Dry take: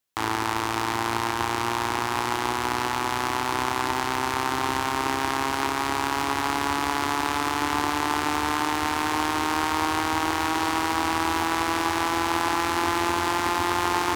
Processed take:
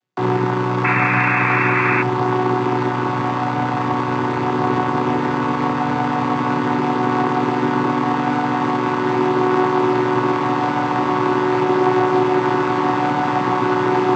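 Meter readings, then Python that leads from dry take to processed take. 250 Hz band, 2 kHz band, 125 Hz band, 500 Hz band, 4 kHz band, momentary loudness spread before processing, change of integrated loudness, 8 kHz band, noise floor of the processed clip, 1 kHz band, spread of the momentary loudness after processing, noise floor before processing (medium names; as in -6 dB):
+10.5 dB, +5.5 dB, +13.5 dB, +12.0 dB, -4.5 dB, 2 LU, +7.0 dB, under -10 dB, -21 dBFS, +5.5 dB, 5 LU, -28 dBFS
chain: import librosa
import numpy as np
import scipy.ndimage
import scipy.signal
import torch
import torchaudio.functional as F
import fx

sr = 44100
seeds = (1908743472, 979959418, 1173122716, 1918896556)

y = fx.chord_vocoder(x, sr, chord='minor triad', root=47)
y = fx.spec_paint(y, sr, seeds[0], shape='noise', start_s=0.84, length_s=1.19, low_hz=990.0, high_hz=2700.0, level_db=-27.0)
y = fx.air_absorb(y, sr, metres=64.0)
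y = y * librosa.db_to_amplitude(8.5)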